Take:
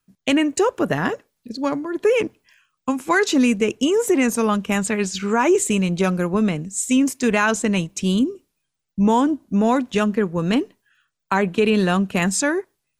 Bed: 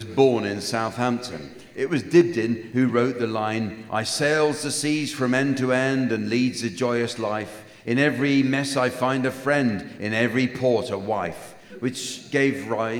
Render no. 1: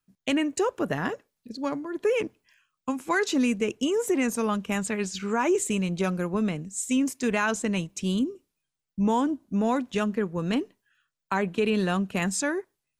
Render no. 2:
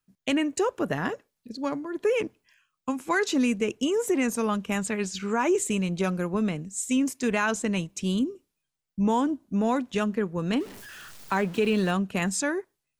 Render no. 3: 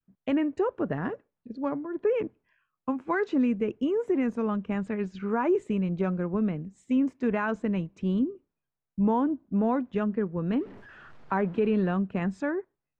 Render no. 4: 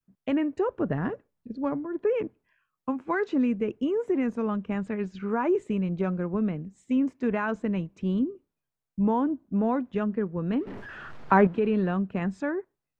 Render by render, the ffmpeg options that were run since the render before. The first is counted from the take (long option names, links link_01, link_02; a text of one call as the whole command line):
ffmpeg -i in.wav -af "volume=-7dB" out.wav
ffmpeg -i in.wav -filter_complex "[0:a]asettb=1/sr,asplit=3[link_01][link_02][link_03];[link_01]atrim=end=10.604[link_04];[link_02]atrim=start=10.6:end=11.91,asetpts=PTS-STARTPTS,afade=type=in:duration=0.004:curve=qsin,afade=type=out:start_time=1.306:duration=0.004:curve=qsin,aeval=exprs='val(0)+0.5*0.0119*sgn(val(0))':channel_layout=same[link_05];[link_03]atrim=start=11.906[link_06];[link_04][link_05]acrossfade=duration=0.004:curve1=hsin:curve2=qsin[link_07];[link_07][link_06]acrossfade=duration=0.004:curve1=qsin:curve2=hsin" out.wav
ffmpeg -i in.wav -af "lowpass=1400,adynamicequalizer=threshold=0.00891:dfrequency=870:dqfactor=0.85:tfrequency=870:tqfactor=0.85:attack=5:release=100:ratio=0.375:range=2.5:mode=cutabove:tftype=bell" out.wav
ffmpeg -i in.wav -filter_complex "[0:a]asettb=1/sr,asplit=3[link_01][link_02][link_03];[link_01]atrim=end=0.684[link_04];[link_02]atrim=start=0.68:end=1.97,asetpts=PTS-STARTPTS,afade=type=in:duration=0.004:curve=qsin,afade=type=out:start_time=1.286:duration=0.004:curve=qsin,lowshelf=frequency=160:gain=7.5[link_05];[link_03]atrim=start=1.966[link_06];[link_04][link_05]acrossfade=duration=0.004:curve1=hsin:curve2=qsin[link_07];[link_07][link_06]acrossfade=duration=0.004:curve1=qsin:curve2=hsin,asplit=3[link_08][link_09][link_10];[link_08]atrim=end=10.672[link_11];[link_09]atrim=start=10.668:end=11.472,asetpts=PTS-STARTPTS,volume=8dB[link_12];[link_10]atrim=start=11.468[link_13];[link_11][link_12]acrossfade=duration=0.004:curve1=hsin:curve2=hsin[link_14];[link_14][link_13]acrossfade=duration=0.004:curve1=hsin:curve2=hsin" out.wav